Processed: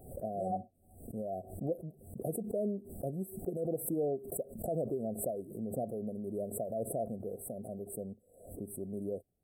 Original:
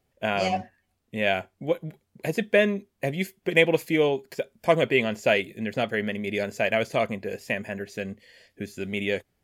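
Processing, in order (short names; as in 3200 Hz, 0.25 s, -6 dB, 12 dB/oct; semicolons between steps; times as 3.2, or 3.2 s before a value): limiter -15.5 dBFS, peak gain reduction 11.5 dB; brick-wall FIR band-stop 780–7700 Hz; backwards sustainer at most 86 dB/s; gain -8.5 dB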